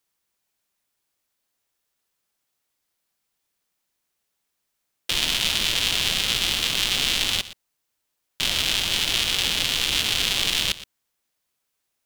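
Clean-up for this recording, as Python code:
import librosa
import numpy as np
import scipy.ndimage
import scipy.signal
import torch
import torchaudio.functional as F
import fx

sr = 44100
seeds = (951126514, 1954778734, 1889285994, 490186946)

y = fx.fix_echo_inverse(x, sr, delay_ms=119, level_db=-16.0)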